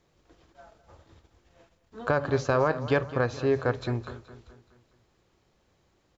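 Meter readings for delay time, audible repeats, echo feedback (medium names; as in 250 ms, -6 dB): 211 ms, 4, 49%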